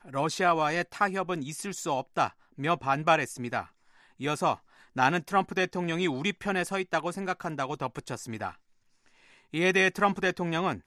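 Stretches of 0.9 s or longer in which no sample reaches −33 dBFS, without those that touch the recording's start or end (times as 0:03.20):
0:08.50–0:09.54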